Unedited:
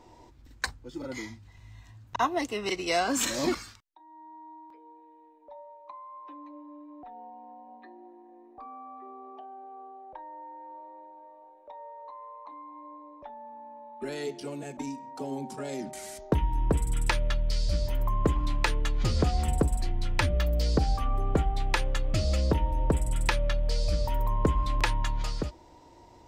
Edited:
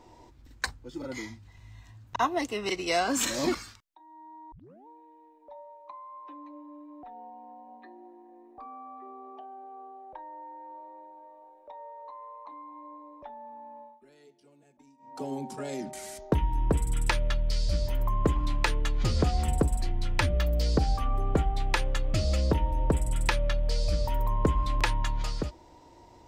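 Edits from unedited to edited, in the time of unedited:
4.52 s: tape start 0.35 s
13.81–15.18 s: dip -23 dB, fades 0.20 s

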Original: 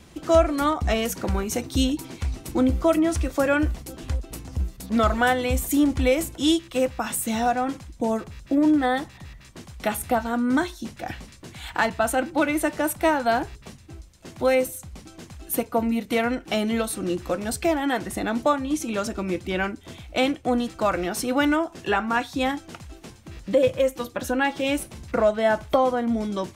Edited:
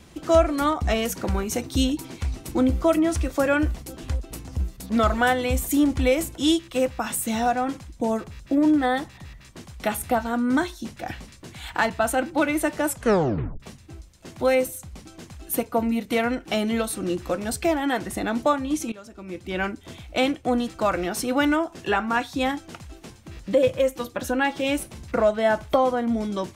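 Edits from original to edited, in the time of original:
12.86 s: tape stop 0.74 s
18.92–19.65 s: fade in quadratic, from -17.5 dB

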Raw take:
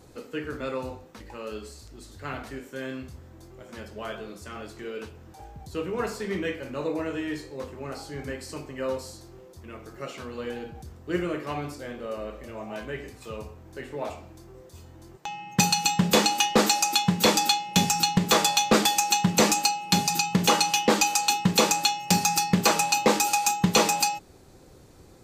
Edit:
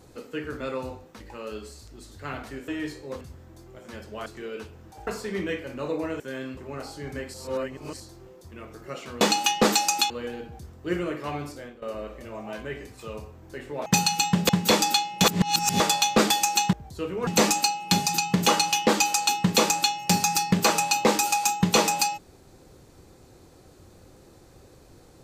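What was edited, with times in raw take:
2.68–3.05 s: swap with 7.16–7.69 s
4.10–4.68 s: delete
5.49–6.03 s: move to 19.28 s
8.46–9.12 s: reverse
11.76–12.05 s: fade out, to -16.5 dB
14.09–15.52 s: delete
16.15–17.04 s: move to 10.33 s
17.79–18.35 s: reverse

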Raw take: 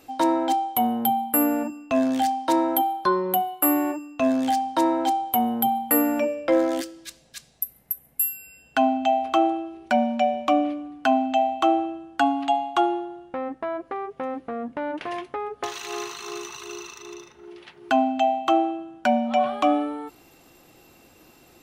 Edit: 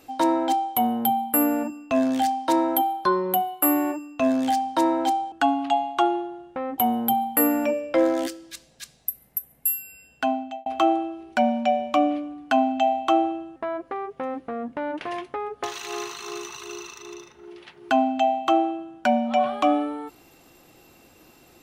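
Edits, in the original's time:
8.35–9.20 s: fade out equal-power
12.10–13.56 s: move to 5.32 s

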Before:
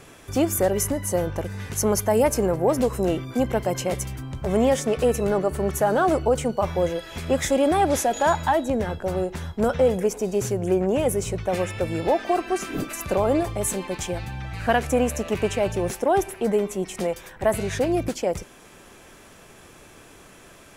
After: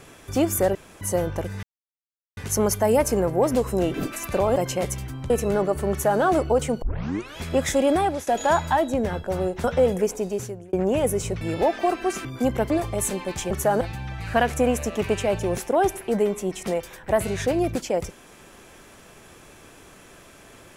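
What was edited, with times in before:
0.75–1.01 s: room tone
1.63 s: insert silence 0.74 s
3.20–3.65 s: swap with 12.71–13.33 s
4.39–5.06 s: delete
5.67–5.97 s: copy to 14.14 s
6.58 s: tape start 0.56 s
7.72–8.03 s: fade out, to -18.5 dB
9.40–9.66 s: delete
10.16–10.75 s: fade out
11.43–11.87 s: delete

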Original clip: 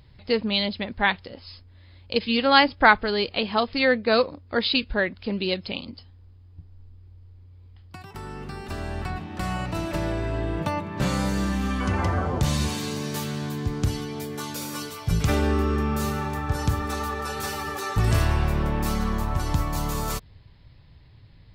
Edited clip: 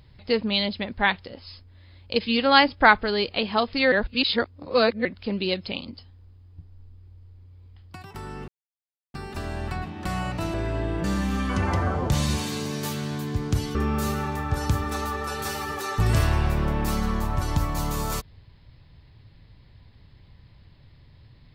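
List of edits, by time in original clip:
3.92–5.05 s: reverse
8.48 s: insert silence 0.66 s
9.88–10.13 s: delete
10.63–11.35 s: delete
14.06–15.73 s: delete

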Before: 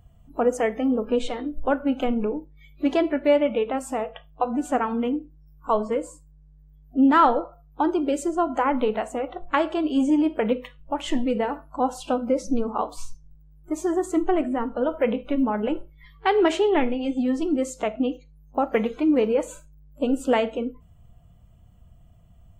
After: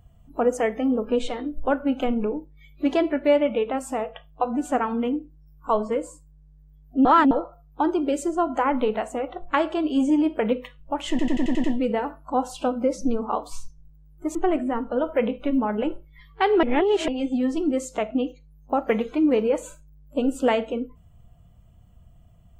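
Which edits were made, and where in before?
7.05–7.31 s: reverse
11.10 s: stutter 0.09 s, 7 plays
13.81–14.20 s: delete
16.48–16.93 s: reverse

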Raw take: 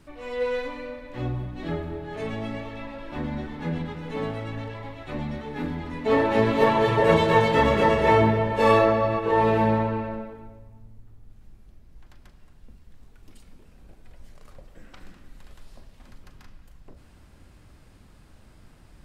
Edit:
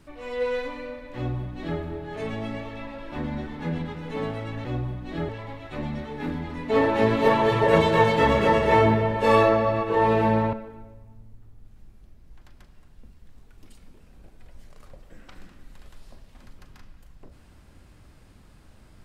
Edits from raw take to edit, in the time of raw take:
1.16–1.80 s: copy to 4.65 s
9.89–10.18 s: delete

